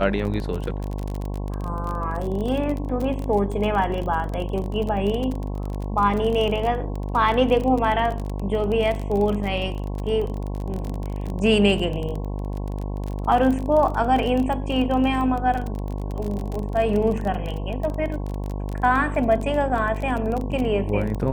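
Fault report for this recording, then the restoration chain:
mains buzz 50 Hz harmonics 22 −28 dBFS
surface crackle 25 per second −26 dBFS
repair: click removal
hum removal 50 Hz, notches 22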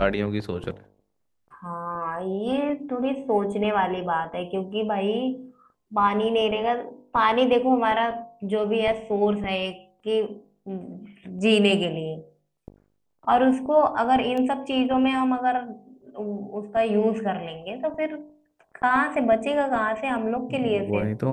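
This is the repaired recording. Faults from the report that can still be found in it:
none of them is left

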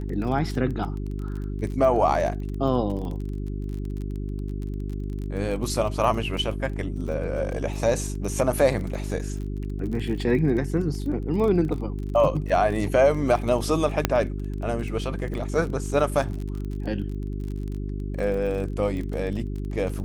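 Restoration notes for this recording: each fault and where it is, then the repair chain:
surface crackle 26 per second −31 dBFS
mains hum 50 Hz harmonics 8 −30 dBFS
0:14.05: click −4 dBFS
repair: click removal
hum removal 50 Hz, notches 8

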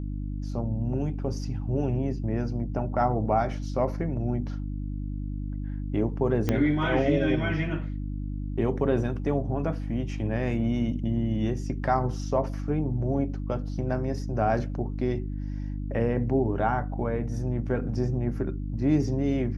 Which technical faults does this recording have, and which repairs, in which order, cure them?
mains hum 50 Hz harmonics 6 −32 dBFS
0:06.49: click −12 dBFS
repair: click removal
hum removal 50 Hz, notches 6

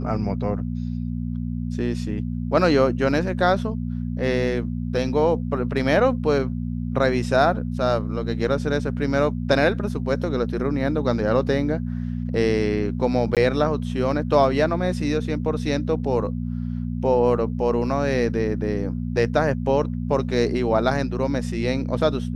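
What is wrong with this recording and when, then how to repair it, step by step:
mains hum 60 Hz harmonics 4 −27 dBFS
0:13.35–0:13.37: drop-out 17 ms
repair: hum removal 60 Hz, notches 4
repair the gap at 0:13.35, 17 ms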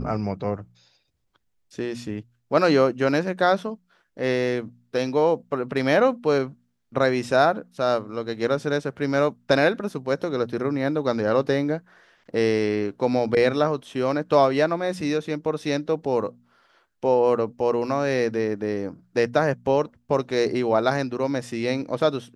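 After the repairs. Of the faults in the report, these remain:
none of them is left

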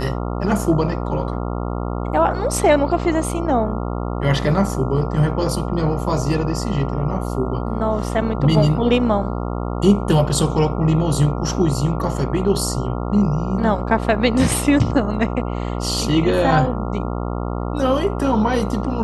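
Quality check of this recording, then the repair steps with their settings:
mains buzz 60 Hz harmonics 23 −24 dBFS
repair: hum removal 60 Hz, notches 23

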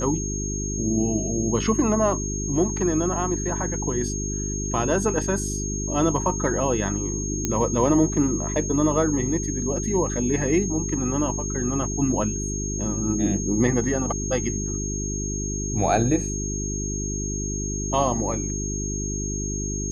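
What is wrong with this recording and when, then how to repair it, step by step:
mains hum 50 Hz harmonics 8 −29 dBFS
whistle 6,500 Hz −30 dBFS
0:07.45: click −9 dBFS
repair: click removal
notch filter 6,500 Hz, Q 30
hum removal 50 Hz, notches 8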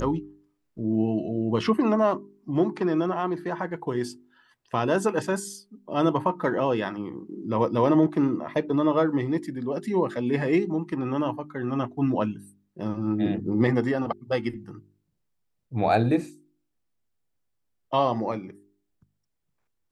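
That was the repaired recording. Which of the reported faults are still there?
none of them is left

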